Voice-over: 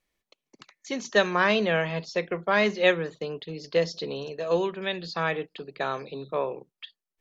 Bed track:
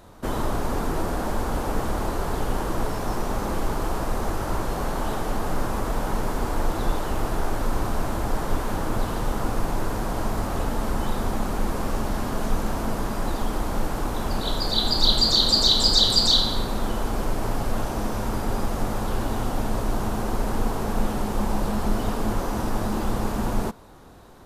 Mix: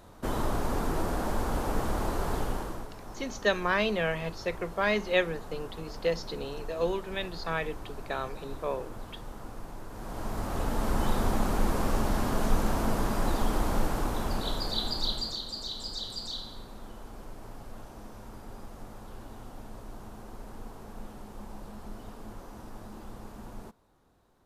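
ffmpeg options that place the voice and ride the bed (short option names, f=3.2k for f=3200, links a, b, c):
-filter_complex "[0:a]adelay=2300,volume=-4.5dB[a];[1:a]volume=11.5dB,afade=t=out:st=2.35:d=0.52:silence=0.223872,afade=t=in:st=9.9:d=1.18:silence=0.16788,afade=t=out:st=13.69:d=1.74:silence=0.133352[b];[a][b]amix=inputs=2:normalize=0"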